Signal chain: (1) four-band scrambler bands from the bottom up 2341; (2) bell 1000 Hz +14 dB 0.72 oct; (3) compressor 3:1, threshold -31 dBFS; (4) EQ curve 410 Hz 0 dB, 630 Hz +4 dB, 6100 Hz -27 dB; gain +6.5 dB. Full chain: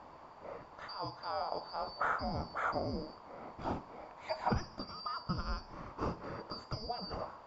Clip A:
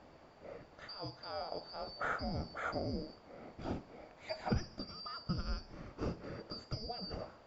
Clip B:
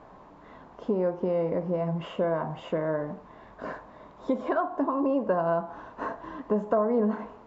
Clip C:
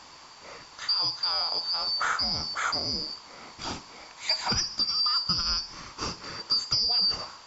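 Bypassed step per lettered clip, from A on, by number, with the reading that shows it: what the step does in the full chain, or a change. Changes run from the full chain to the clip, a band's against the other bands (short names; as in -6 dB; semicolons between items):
2, 1 kHz band -7.0 dB; 1, 4 kHz band -12.5 dB; 4, 4 kHz band +23.5 dB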